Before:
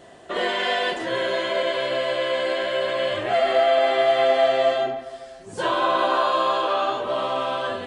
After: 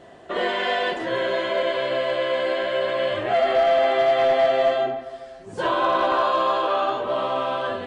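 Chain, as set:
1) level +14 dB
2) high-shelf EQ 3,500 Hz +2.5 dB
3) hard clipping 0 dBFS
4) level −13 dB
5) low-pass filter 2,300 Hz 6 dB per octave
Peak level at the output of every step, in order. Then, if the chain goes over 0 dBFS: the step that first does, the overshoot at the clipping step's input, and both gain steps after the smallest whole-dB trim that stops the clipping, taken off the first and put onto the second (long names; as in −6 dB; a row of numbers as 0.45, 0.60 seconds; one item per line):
+6.5, +6.5, 0.0, −13.0, −13.0 dBFS
step 1, 6.5 dB
step 1 +7 dB, step 4 −6 dB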